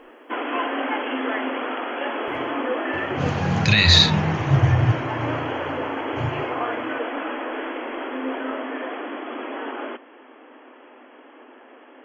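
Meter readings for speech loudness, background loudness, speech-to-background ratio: -18.5 LUFS, -27.5 LUFS, 9.0 dB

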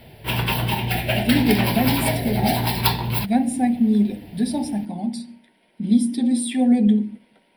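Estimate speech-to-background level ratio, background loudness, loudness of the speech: 1.0 dB, -22.5 LUFS, -21.5 LUFS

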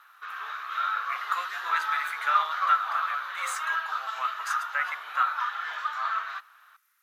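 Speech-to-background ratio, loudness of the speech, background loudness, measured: -0.5 dB, -31.0 LUFS, -30.5 LUFS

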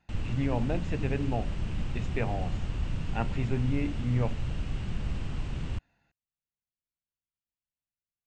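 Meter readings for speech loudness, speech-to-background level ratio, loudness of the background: -33.0 LUFS, 3.0 dB, -36.0 LUFS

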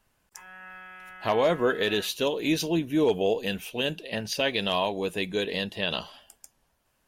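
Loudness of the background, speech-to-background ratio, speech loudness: -45.0 LUFS, 18.0 dB, -27.0 LUFS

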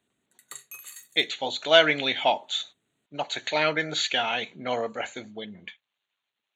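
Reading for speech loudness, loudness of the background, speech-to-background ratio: -25.0 LUFS, -43.0 LUFS, 18.0 dB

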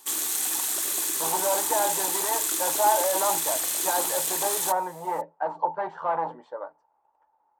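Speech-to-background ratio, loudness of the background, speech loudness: -4.5 dB, -24.5 LUFS, -29.0 LUFS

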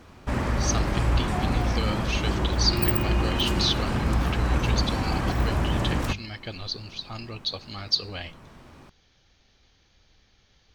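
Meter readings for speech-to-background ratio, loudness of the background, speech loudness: -5.0 dB, -26.0 LUFS, -31.0 LUFS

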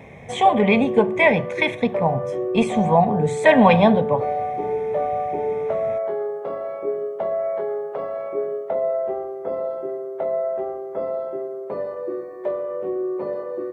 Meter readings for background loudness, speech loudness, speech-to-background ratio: -26.0 LUFS, -18.5 LUFS, 7.5 dB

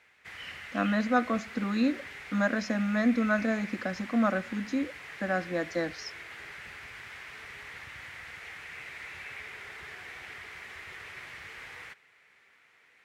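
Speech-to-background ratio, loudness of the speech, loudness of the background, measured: 12.5 dB, -30.0 LUFS, -42.5 LUFS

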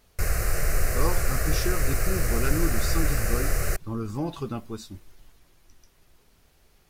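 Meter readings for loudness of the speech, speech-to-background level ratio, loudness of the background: -33.0 LUFS, -5.0 dB, -28.0 LUFS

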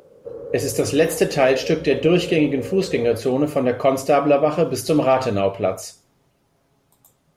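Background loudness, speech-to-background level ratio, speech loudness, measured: -32.5 LUFS, 13.0 dB, -19.5 LUFS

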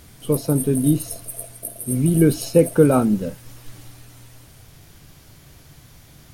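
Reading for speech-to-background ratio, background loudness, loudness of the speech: 12.0 dB, -31.0 LUFS, -19.0 LUFS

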